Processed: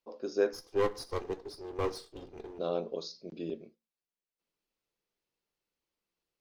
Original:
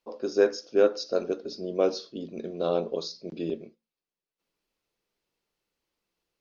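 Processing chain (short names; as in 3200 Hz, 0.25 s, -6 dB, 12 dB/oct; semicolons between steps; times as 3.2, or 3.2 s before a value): 0.53–2.59 minimum comb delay 2.5 ms; gain -6.5 dB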